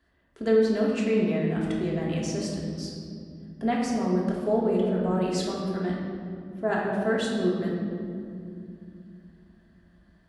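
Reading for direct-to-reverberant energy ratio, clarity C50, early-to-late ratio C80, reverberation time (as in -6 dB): -4.0 dB, 0.5 dB, 2.0 dB, 2.5 s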